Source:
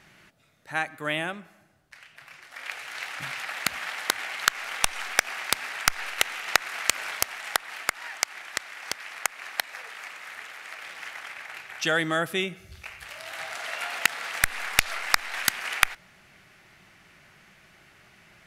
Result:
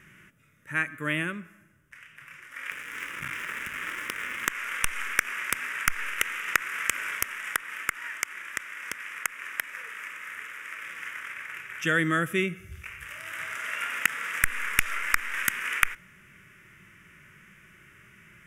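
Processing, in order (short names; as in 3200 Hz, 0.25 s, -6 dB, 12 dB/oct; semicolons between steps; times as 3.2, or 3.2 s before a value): 2.71–4.5 cycle switcher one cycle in 3, muted; fixed phaser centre 1800 Hz, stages 4; harmonic-percussive split percussive -6 dB; gain +5.5 dB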